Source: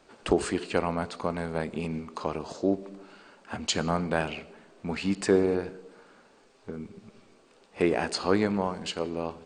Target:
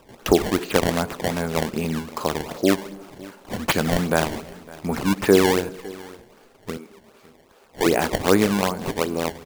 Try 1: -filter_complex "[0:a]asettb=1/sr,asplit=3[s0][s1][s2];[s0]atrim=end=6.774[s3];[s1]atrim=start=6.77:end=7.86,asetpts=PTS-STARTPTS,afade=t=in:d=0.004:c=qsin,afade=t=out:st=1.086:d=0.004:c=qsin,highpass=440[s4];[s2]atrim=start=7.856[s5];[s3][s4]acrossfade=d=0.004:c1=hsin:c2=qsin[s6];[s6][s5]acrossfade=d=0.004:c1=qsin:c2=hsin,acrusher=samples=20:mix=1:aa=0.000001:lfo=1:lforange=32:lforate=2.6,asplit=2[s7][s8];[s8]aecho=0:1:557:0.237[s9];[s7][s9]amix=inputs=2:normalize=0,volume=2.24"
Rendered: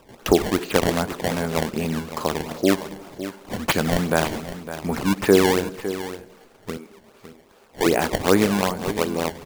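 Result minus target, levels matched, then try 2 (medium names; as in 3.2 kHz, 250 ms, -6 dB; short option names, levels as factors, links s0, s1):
echo-to-direct +8.5 dB
-filter_complex "[0:a]asettb=1/sr,asplit=3[s0][s1][s2];[s0]atrim=end=6.774[s3];[s1]atrim=start=6.77:end=7.86,asetpts=PTS-STARTPTS,afade=t=in:d=0.004:c=qsin,afade=t=out:st=1.086:d=0.004:c=qsin,highpass=440[s4];[s2]atrim=start=7.856[s5];[s3][s4]acrossfade=d=0.004:c1=hsin:c2=qsin[s6];[s6][s5]acrossfade=d=0.004:c1=qsin:c2=hsin,acrusher=samples=20:mix=1:aa=0.000001:lfo=1:lforange=32:lforate=2.6,asplit=2[s7][s8];[s8]aecho=0:1:557:0.0891[s9];[s7][s9]amix=inputs=2:normalize=0,volume=2.24"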